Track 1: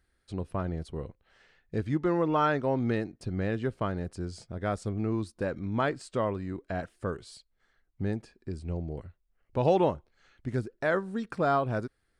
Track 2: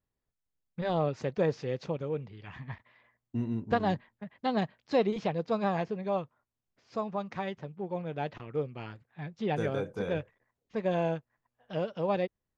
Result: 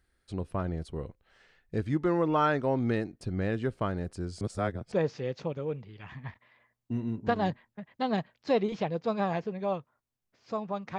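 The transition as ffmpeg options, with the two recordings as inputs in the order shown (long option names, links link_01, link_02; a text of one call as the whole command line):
ffmpeg -i cue0.wav -i cue1.wav -filter_complex "[0:a]apad=whole_dur=10.98,atrim=end=10.98,asplit=2[link_01][link_02];[link_01]atrim=end=4.412[link_03];[link_02]atrim=start=4.408:end=4.922,asetpts=PTS-STARTPTS,areverse[link_04];[1:a]atrim=start=1.358:end=7.42[link_05];[link_03][link_04]acrossfade=duration=0.004:curve1=hsin:curve2=hsin[link_06];[link_06][link_05]acrossfade=duration=0.004:curve1=hsin:curve2=hsin" out.wav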